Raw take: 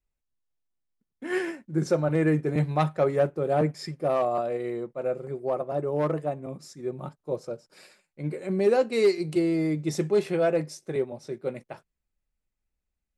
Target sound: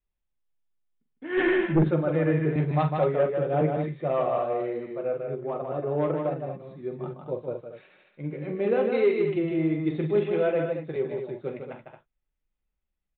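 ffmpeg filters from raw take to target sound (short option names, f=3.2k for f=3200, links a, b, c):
-filter_complex "[0:a]flanger=delay=4.8:depth=4:regen=-48:speed=0.63:shape=triangular,asplit=2[a][b];[b]aecho=0:1:43.73|154.5|224.5:0.355|0.562|0.398[c];[a][c]amix=inputs=2:normalize=0,asplit=3[d][e][f];[d]afade=t=out:st=1.37:d=0.02[g];[e]aeval=exprs='0.2*(cos(1*acos(clip(val(0)/0.2,-1,1)))-cos(1*PI/2))+0.0794*(cos(5*acos(clip(val(0)/0.2,-1,1)))-cos(5*PI/2))+0.0141*(cos(6*acos(clip(val(0)/0.2,-1,1)))-cos(6*PI/2))':c=same,afade=t=in:st=1.37:d=0.02,afade=t=out:st=1.89:d=0.02[h];[f]afade=t=in:st=1.89:d=0.02[i];[g][h][i]amix=inputs=3:normalize=0,aresample=8000,aresample=44100,volume=1.5dB"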